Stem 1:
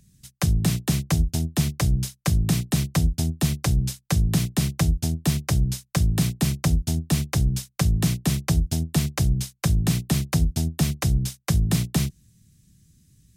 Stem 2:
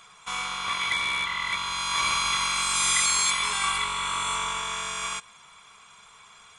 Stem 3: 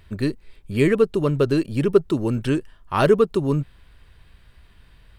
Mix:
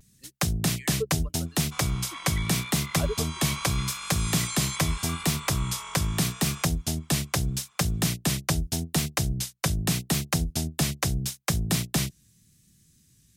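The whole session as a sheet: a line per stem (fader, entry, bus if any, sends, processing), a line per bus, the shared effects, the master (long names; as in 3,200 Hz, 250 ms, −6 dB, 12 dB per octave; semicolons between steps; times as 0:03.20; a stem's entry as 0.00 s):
+2.0 dB, 0.00 s, no send, low-shelf EQ 240 Hz −10.5 dB
−11.0 dB, 1.45 s, no send, no processing
−17.5 dB, 0.00 s, no send, spectral dynamics exaggerated over time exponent 2; auto-filter high-pass saw up 1 Hz 420–2,000 Hz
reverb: not used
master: pitch vibrato 0.81 Hz 46 cents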